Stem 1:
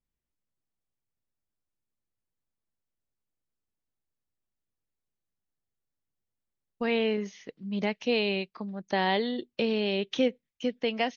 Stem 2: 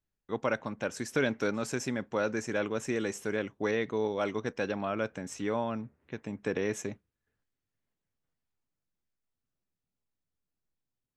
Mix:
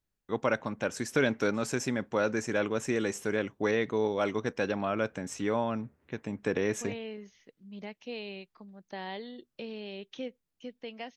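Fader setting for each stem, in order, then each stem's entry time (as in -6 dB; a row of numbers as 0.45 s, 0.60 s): -13.0 dB, +2.0 dB; 0.00 s, 0.00 s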